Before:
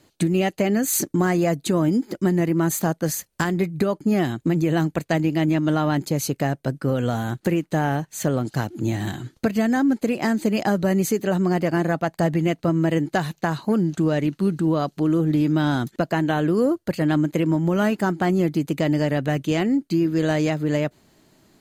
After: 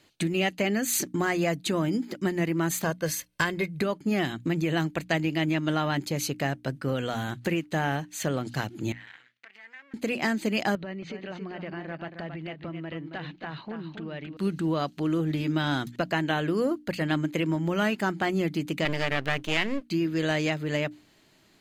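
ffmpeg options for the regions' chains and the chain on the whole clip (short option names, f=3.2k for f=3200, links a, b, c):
-filter_complex "[0:a]asettb=1/sr,asplit=3[a][b][c];[a]atrim=end=2.844[d];[b]atrim=start=2.84:end=3.81,asetpts=PTS-STARTPTS,afade=t=in:d=0.004:c=qsin,afade=t=out:st=0.966:d=0.004:c=qsin,bandreject=f=7k:w=12,aecho=1:1:1.9:0.46,atrim=end_sample=42777[e];[c]atrim=start=3.806[f];[d][e]acrossfade=d=0.004:c1=hsin:c2=qsin[g];[g][f]acrossfade=d=0.004:c1=qsin:c2=hsin,asettb=1/sr,asplit=3[h][i][j];[h]atrim=end=8.924[k];[i]atrim=start=8.92:end=9.94,asetpts=PTS-STARTPTS,afade=t=in:d=0.004:c=qsin,afade=t=out:st=1.016:d=0.004:c=qsin,acompressor=threshold=-27dB:ratio=6:attack=3.2:release=140:knee=1:detection=peak,aeval=exprs='max(val(0),0)':c=same,bandpass=f=2k:t=q:w=2.4[l];[j]atrim=start=9.936[m];[k][l]acrossfade=d=0.004:c1=hsin:c2=qsin[n];[n][m]acrossfade=d=0.004:c1=qsin:c2=hsin,asettb=1/sr,asplit=3[o][p][q];[o]atrim=end=10.754[r];[p]atrim=start=10.75:end=14.37,asetpts=PTS-STARTPTS,afade=t=in:d=0.004:c=qsin,afade=t=out:st=3.616:d=0.004:c=qsin,lowpass=f=3.8k:w=0.5412,lowpass=f=3.8k:w=1.3066,acompressor=threshold=-31dB:ratio=3:attack=3.2:release=140:knee=1:detection=peak,aecho=1:1:273:0.422,atrim=end_sample=159642[s];[q]atrim=start=14.366[t];[r][s]acrossfade=d=0.004:c1=hsin:c2=qsin[u];[u][t]acrossfade=d=0.004:c1=qsin:c2=hsin,asettb=1/sr,asplit=3[v][w][x];[v]atrim=end=18.854[y];[w]atrim=start=18.85:end=19.88,asetpts=PTS-STARTPTS,afade=t=in:d=0.004:c=qsin,afade=t=out:st=1.026:d=0.004:c=qsin,equalizer=f=1.7k:w=0.53:g=5.5,aeval=exprs='max(val(0),0)':c=same[z];[x]atrim=start=19.876[aa];[y][z]acrossfade=d=0.004:c1=hsin:c2=qsin[ab];[ab][aa]acrossfade=d=0.004:c1=qsin:c2=hsin,equalizer=f=2.7k:t=o:w=1.9:g=9,bandreject=f=60:t=h:w=6,bandreject=f=120:t=h:w=6,bandreject=f=180:t=h:w=6,bandreject=f=240:t=h:w=6,bandreject=f=300:t=h:w=6,volume=-6.5dB"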